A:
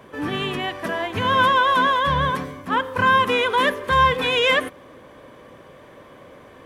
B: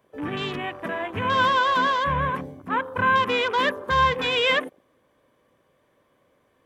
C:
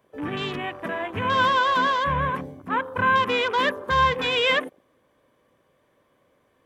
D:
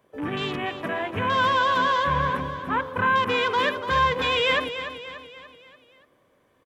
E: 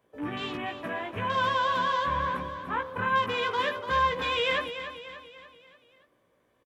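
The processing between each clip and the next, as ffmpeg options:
-af "crystalizer=i=1:c=0,afwtdn=0.0355,volume=-3.5dB"
-af anull
-filter_complex "[0:a]asplit=2[a][b];[b]alimiter=limit=-17.5dB:level=0:latency=1,volume=-2dB[c];[a][c]amix=inputs=2:normalize=0,aecho=1:1:291|582|873|1164|1455:0.299|0.146|0.0717|0.0351|0.0172,volume=-4.5dB"
-filter_complex "[0:a]asplit=2[a][b];[b]adelay=17,volume=-5dB[c];[a][c]amix=inputs=2:normalize=0,volume=-6.5dB"

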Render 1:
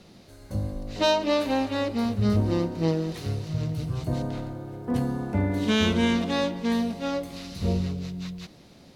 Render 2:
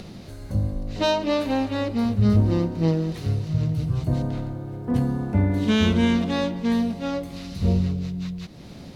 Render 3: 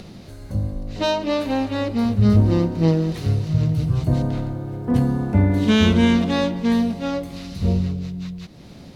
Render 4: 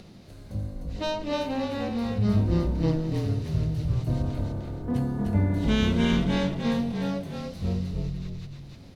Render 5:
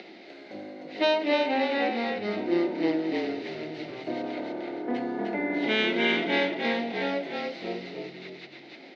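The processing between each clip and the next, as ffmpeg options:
-af "acompressor=mode=upward:threshold=-34dB:ratio=2.5,bass=f=250:g=6,treble=f=4k:g=-2"
-af "dynaudnorm=f=290:g=13:m=4.5dB"
-filter_complex "[0:a]asplit=5[a][b][c][d][e];[b]adelay=302,afreqshift=-41,volume=-3.5dB[f];[c]adelay=604,afreqshift=-82,volume=-13.7dB[g];[d]adelay=906,afreqshift=-123,volume=-23.8dB[h];[e]adelay=1208,afreqshift=-164,volume=-34dB[i];[a][f][g][h][i]amix=inputs=5:normalize=0,volume=-8.5dB"
-filter_complex "[0:a]asplit=2[a][b];[b]alimiter=limit=-21dB:level=0:latency=1:release=304,volume=2dB[c];[a][c]amix=inputs=2:normalize=0,highpass=f=320:w=0.5412,highpass=f=320:w=1.3066,equalizer=f=340:t=q:w=4:g=5,equalizer=f=490:t=q:w=4:g=-4,equalizer=f=750:t=q:w=4:g=4,equalizer=f=1.1k:t=q:w=4:g=-10,equalizer=f=2.1k:t=q:w=4:g=10,lowpass=f=4.3k:w=0.5412,lowpass=f=4.3k:w=1.3066"

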